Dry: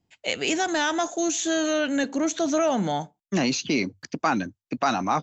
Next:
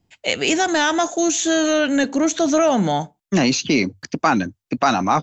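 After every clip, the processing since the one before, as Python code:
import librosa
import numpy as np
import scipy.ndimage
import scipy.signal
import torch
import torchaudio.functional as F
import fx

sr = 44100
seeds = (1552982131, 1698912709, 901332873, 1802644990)

y = fx.low_shelf(x, sr, hz=71.0, db=7.0)
y = y * librosa.db_to_amplitude(6.0)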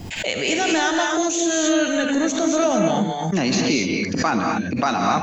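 y = fx.rev_gated(x, sr, seeds[0], gate_ms=270, shape='rising', drr_db=0.5)
y = fx.pre_swell(y, sr, db_per_s=46.0)
y = y * librosa.db_to_amplitude(-4.5)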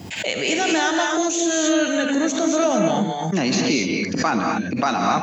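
y = scipy.signal.sosfilt(scipy.signal.butter(2, 110.0, 'highpass', fs=sr, output='sos'), x)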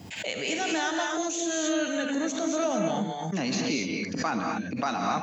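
y = fx.notch(x, sr, hz=360.0, q=12.0)
y = y * librosa.db_to_amplitude(-8.0)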